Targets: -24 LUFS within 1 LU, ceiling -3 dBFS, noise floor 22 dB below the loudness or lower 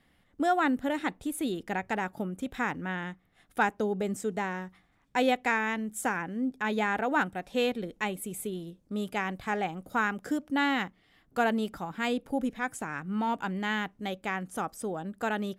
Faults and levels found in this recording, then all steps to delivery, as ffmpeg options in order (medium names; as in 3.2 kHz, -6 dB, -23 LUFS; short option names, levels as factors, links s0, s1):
loudness -31.0 LUFS; peak level -13.5 dBFS; loudness target -24.0 LUFS
-> -af "volume=2.24"